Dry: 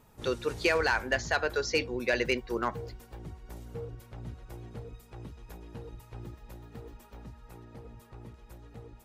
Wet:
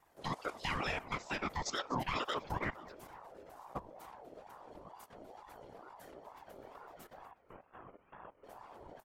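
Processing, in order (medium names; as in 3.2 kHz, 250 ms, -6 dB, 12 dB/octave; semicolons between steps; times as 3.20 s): in parallel at -2.5 dB: compression 5:1, threshold -41 dBFS, peak gain reduction 17 dB; 7.25–8.44 s: on the sum: rippled Chebyshev low-pass 2.5 kHz, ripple 9 dB; level held to a coarse grid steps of 17 dB; whisper effect; on a send: frequency-shifting echo 246 ms, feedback 42%, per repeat -30 Hz, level -20 dB; on the sum: ring modulator with a swept carrier 700 Hz, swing 35%, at 2.2 Hz; trim +1 dB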